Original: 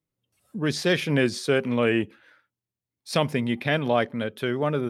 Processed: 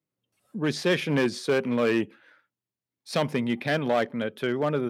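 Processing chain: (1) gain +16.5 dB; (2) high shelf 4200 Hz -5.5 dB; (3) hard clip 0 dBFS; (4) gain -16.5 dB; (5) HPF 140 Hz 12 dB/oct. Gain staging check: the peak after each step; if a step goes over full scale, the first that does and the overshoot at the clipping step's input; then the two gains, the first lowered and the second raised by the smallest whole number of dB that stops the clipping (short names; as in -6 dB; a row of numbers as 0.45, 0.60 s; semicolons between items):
+8.0, +7.5, 0.0, -16.5, -12.5 dBFS; step 1, 7.5 dB; step 1 +8.5 dB, step 4 -8.5 dB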